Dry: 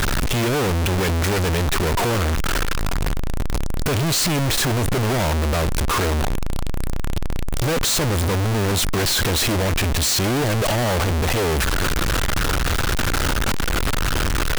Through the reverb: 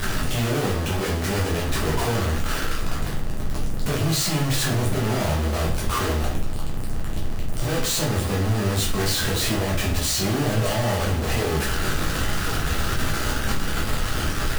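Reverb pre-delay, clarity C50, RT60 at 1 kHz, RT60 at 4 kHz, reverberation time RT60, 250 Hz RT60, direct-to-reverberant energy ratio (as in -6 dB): 7 ms, 6.0 dB, 0.45 s, 0.40 s, 0.45 s, 0.50 s, -5.0 dB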